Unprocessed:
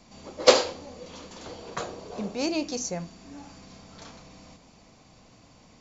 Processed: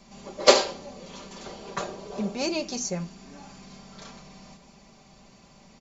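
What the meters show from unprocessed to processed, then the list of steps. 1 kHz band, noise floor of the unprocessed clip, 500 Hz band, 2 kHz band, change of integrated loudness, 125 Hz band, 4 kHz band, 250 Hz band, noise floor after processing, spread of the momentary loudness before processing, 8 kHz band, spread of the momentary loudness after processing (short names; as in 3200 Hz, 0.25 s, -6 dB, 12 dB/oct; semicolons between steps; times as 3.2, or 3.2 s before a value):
+1.5 dB, -56 dBFS, 0.0 dB, +1.5 dB, +1.0 dB, +3.0 dB, +1.5 dB, +0.5 dB, -55 dBFS, 25 LU, n/a, 25 LU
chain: comb 5.1 ms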